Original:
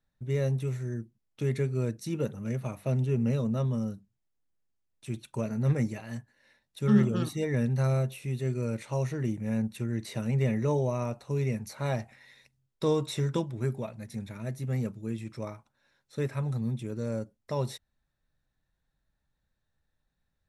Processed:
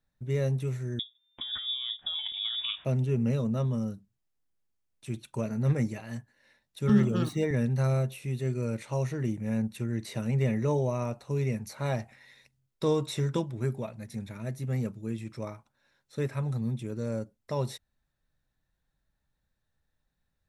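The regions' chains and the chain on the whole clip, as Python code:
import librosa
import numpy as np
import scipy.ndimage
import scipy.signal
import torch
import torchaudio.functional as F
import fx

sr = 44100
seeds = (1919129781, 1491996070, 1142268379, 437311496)

y = fx.chain(x, sr, fx.over_compress(threshold_db=-34.0, ratio=-1.0),
    fx.freq_invert(carrier_hz=3600), at=(0.99, 2.85))
y = fx.chain(y, sr, fx.median_filter(points=3),
    fx.band_squash(depth_pct=40), at=(6.89, 7.51))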